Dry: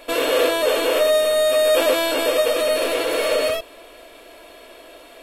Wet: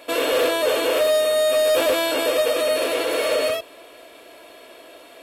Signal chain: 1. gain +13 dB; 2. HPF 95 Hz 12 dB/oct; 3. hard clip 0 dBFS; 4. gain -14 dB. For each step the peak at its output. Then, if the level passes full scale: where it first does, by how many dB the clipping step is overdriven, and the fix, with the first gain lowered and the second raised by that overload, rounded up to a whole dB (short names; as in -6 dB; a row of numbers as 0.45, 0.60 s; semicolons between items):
+6.5, +6.0, 0.0, -14.0 dBFS; step 1, 6.0 dB; step 1 +7 dB, step 4 -8 dB